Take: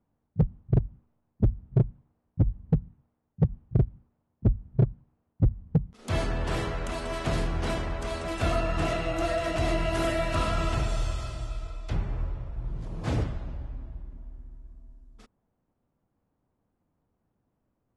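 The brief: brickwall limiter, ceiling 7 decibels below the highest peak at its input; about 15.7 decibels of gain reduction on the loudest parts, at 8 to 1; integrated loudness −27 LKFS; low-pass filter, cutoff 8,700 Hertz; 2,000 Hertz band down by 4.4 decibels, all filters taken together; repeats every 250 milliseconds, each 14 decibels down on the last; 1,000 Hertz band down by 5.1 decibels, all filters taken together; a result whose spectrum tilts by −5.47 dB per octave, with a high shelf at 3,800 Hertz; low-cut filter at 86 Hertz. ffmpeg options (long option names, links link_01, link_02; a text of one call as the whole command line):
ffmpeg -i in.wav -af "highpass=86,lowpass=8700,equalizer=frequency=1000:width_type=o:gain=-6.5,equalizer=frequency=2000:width_type=o:gain=-5.5,highshelf=frequency=3800:gain=5,acompressor=threshold=-34dB:ratio=8,alimiter=level_in=6dB:limit=-24dB:level=0:latency=1,volume=-6dB,aecho=1:1:250|500:0.2|0.0399,volume=14.5dB" out.wav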